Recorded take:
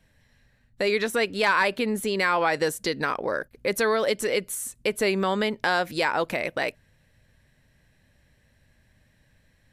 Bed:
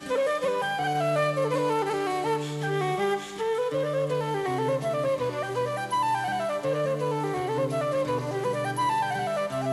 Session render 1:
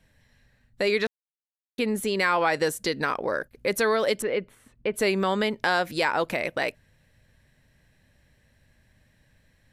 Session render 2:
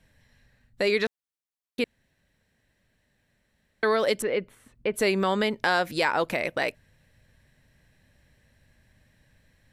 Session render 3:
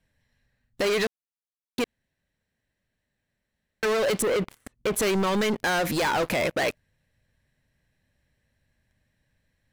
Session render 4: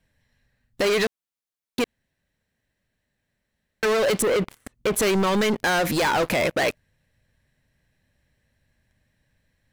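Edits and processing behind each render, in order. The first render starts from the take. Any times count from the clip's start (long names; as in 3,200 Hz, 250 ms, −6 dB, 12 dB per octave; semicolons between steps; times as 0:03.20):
0:01.07–0:01.78: silence; 0:04.22–0:04.94: high-frequency loss of the air 410 metres
0:01.84–0:03.83: fill with room tone
leveller curve on the samples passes 5; brickwall limiter −21 dBFS, peak gain reduction 10 dB
level +3 dB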